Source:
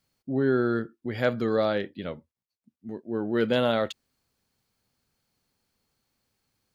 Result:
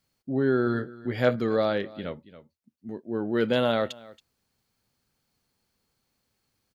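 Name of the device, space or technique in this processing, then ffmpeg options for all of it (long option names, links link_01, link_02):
ducked delay: -filter_complex "[0:a]asplit=3[link_01][link_02][link_03];[link_02]adelay=277,volume=-9dB[link_04];[link_03]apad=whole_len=309537[link_05];[link_04][link_05]sidechaincompress=threshold=-34dB:ratio=8:attack=6.1:release=881[link_06];[link_01][link_06]amix=inputs=2:normalize=0,asettb=1/sr,asplit=3[link_07][link_08][link_09];[link_07]atrim=end=0.654[link_10];[link_08]atrim=start=0.65:end=1.36,asetpts=PTS-STARTPTS,afade=type=in:duration=0.004:curve=qsin,afade=type=out:start_time=0.706:duration=0.004:curve=qsin,asplit=2[link_11][link_12];[link_12]adelay=16,volume=-6dB[link_13];[link_11][link_13]amix=inputs=2:normalize=0,atrim=end_sample=31311[link_14];[link_09]atrim=start=1.356[link_15];[link_10][link_14]acrossfade=duration=0.004:curve1=hsin:curve2=qsin[link_16];[link_16][link_15]acrossfade=duration=0.004:curve1=qsin:curve2=hsin"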